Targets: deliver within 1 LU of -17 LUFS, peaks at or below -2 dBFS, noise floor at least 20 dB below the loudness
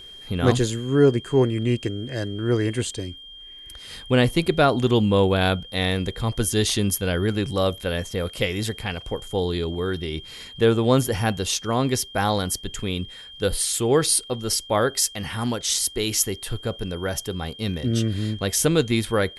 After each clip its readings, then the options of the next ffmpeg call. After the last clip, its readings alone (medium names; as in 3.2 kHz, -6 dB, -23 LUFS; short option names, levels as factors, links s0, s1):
steady tone 3.2 kHz; tone level -40 dBFS; loudness -23.0 LUFS; peak level -4.5 dBFS; loudness target -17.0 LUFS
-> -af "bandreject=f=3200:w=30"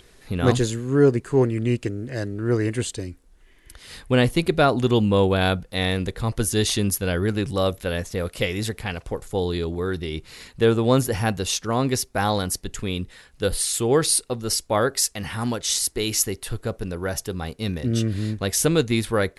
steady tone not found; loudness -23.0 LUFS; peak level -4.5 dBFS; loudness target -17.0 LUFS
-> -af "volume=2,alimiter=limit=0.794:level=0:latency=1"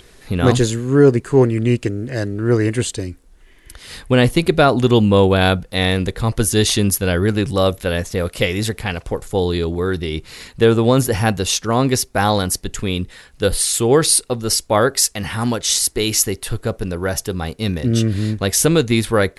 loudness -17.5 LUFS; peak level -2.0 dBFS; noise floor -48 dBFS